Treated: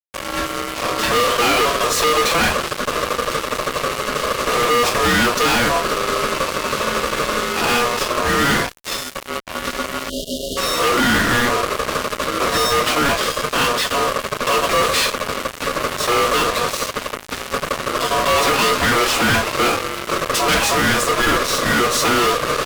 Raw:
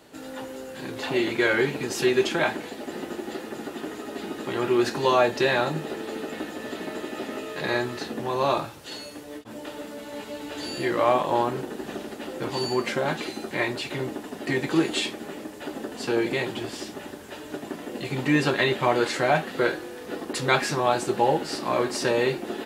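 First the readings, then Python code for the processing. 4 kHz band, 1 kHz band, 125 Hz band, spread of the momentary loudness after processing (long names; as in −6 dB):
+13.0 dB, +10.5 dB, +5.5 dB, 9 LU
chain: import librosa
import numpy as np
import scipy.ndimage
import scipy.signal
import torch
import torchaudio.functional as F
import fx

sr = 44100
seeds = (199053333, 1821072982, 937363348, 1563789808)

y = x * np.sin(2.0 * np.pi * 840.0 * np.arange(len(x)) / sr)
y = fx.fuzz(y, sr, gain_db=38.0, gate_db=-39.0)
y = fx.spec_erase(y, sr, start_s=10.09, length_s=0.48, low_hz=700.0, high_hz=2800.0)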